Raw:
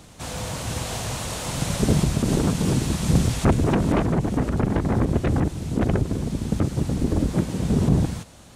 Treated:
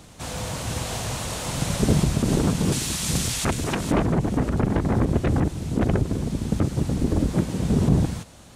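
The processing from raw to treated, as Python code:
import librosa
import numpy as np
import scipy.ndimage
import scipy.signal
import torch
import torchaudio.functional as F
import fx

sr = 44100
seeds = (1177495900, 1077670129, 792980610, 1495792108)

y = fx.tilt_shelf(x, sr, db=-7.5, hz=1400.0, at=(2.72, 3.91))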